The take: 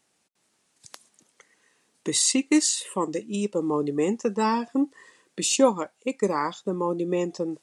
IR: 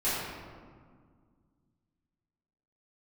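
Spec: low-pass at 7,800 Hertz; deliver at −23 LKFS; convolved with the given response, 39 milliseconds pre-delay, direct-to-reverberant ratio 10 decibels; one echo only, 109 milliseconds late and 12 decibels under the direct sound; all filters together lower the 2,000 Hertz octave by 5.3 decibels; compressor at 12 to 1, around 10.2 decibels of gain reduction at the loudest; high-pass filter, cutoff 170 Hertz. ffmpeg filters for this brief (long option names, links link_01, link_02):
-filter_complex "[0:a]highpass=170,lowpass=7800,equalizer=frequency=2000:width_type=o:gain=-7,acompressor=threshold=-25dB:ratio=12,aecho=1:1:109:0.251,asplit=2[link_01][link_02];[1:a]atrim=start_sample=2205,adelay=39[link_03];[link_02][link_03]afir=irnorm=-1:irlink=0,volume=-20.5dB[link_04];[link_01][link_04]amix=inputs=2:normalize=0,volume=7.5dB"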